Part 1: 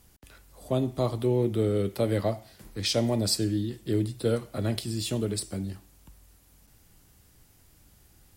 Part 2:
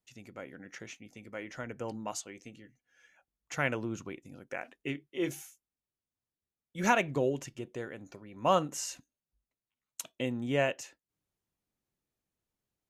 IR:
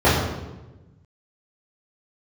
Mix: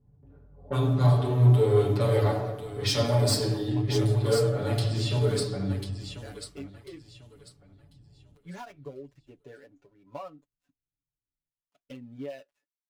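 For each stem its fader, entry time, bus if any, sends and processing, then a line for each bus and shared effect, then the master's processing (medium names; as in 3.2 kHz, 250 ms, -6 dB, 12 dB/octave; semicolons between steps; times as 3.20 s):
+2.0 dB, 0.00 s, send -19.5 dB, echo send -6 dB, level-controlled noise filter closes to 320 Hz, open at -24 dBFS; peaking EQ 370 Hz -3 dB 2 oct; saturation -23 dBFS, distortion -14 dB
0.0 dB, 1.70 s, no send, no echo send, dead-time distortion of 0.17 ms; compression 12:1, threshold -34 dBFS, peak gain reduction 14.5 dB; spectral contrast expander 1.5:1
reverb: on, RT60 1.1 s, pre-delay 3 ms
echo: feedback delay 1044 ms, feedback 26%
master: flange 1 Hz, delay 0.5 ms, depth 5 ms, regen -56%; bass shelf 430 Hz -7.5 dB; comb 7 ms, depth 96%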